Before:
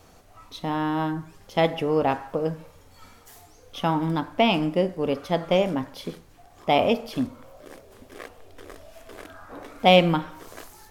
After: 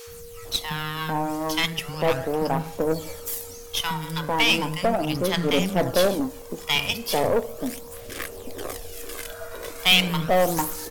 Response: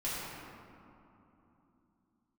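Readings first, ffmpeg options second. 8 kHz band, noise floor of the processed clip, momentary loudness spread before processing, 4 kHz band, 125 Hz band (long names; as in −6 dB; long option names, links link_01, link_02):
can't be measured, −41 dBFS, 22 LU, +7.0 dB, 0.0 dB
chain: -filter_complex "[0:a]asplit=2[link_01][link_02];[link_02]acompressor=threshold=-31dB:ratio=6,volume=-3dB[link_03];[link_01][link_03]amix=inputs=2:normalize=0,crystalizer=i=3:c=0,aphaser=in_gain=1:out_gain=1:delay=2.1:decay=0.48:speed=0.37:type=sinusoidal,acrossover=split=200|1100[link_04][link_05][link_06];[link_04]adelay=70[link_07];[link_05]adelay=450[link_08];[link_07][link_08][link_06]amix=inputs=3:normalize=0,acrossover=split=2600[link_09][link_10];[link_09]asoftclip=type=tanh:threshold=-15dB[link_11];[link_11][link_10]amix=inputs=2:normalize=0,aeval=exprs='val(0)+0.00891*sin(2*PI*470*n/s)':channel_layout=same,aeval=exprs='0.631*(cos(1*acos(clip(val(0)/0.631,-1,1)))-cos(1*PI/2))+0.0501*(cos(8*acos(clip(val(0)/0.631,-1,1)))-cos(8*PI/2))':channel_layout=same"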